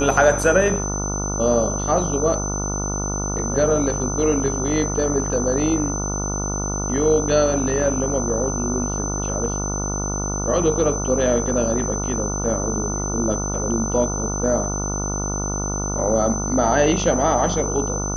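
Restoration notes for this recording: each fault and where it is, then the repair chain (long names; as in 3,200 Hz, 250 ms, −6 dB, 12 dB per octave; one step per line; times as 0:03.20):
mains buzz 50 Hz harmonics 29 −26 dBFS
whistle 6,100 Hz −27 dBFS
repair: notch filter 6,100 Hz, Q 30
hum removal 50 Hz, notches 29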